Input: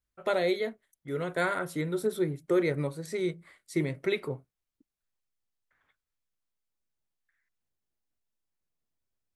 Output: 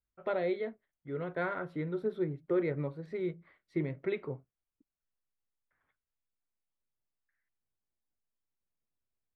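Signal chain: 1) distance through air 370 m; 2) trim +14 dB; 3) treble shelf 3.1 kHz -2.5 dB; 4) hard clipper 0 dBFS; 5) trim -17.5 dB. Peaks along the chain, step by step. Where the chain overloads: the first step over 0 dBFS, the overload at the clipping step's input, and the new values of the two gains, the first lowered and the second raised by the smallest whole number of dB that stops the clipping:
-17.0 dBFS, -3.0 dBFS, -3.0 dBFS, -3.0 dBFS, -20.5 dBFS; nothing clips

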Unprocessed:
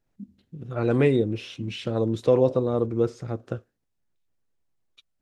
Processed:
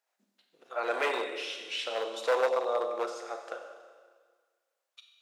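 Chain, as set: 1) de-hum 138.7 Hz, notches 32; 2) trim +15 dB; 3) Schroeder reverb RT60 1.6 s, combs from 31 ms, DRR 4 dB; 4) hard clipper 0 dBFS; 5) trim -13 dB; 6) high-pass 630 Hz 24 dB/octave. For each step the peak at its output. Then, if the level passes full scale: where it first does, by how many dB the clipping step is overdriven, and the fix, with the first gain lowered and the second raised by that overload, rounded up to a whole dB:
-8.0 dBFS, +7.0 dBFS, +9.0 dBFS, 0.0 dBFS, -13.0 dBFS, -14.5 dBFS; step 2, 9.0 dB; step 2 +6 dB, step 5 -4 dB

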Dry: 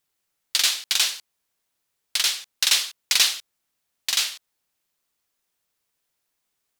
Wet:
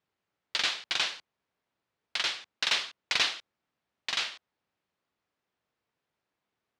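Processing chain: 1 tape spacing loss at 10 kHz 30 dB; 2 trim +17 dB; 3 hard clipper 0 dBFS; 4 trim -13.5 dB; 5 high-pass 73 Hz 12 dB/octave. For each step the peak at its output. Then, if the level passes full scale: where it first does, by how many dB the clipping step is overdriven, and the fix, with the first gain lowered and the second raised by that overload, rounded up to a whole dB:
-14.0 dBFS, +3.0 dBFS, 0.0 dBFS, -13.5 dBFS, -13.0 dBFS; step 2, 3.0 dB; step 2 +14 dB, step 4 -10.5 dB

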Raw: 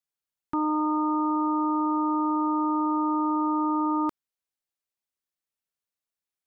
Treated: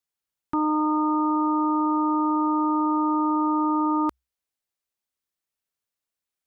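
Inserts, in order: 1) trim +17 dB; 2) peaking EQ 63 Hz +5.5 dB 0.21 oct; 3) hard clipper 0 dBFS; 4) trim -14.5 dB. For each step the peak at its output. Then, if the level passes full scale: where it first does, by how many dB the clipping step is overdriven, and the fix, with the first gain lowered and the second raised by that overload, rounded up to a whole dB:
-2.5 dBFS, -2.5 dBFS, -2.5 dBFS, -17.0 dBFS; nothing clips

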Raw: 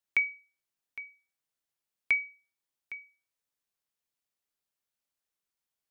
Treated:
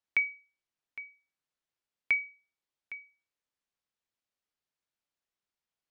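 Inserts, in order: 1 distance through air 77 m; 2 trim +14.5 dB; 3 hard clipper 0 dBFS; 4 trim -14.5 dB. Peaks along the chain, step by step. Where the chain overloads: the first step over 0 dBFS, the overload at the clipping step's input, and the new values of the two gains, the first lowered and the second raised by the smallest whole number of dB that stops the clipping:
-17.5 dBFS, -3.0 dBFS, -3.0 dBFS, -17.5 dBFS; nothing clips

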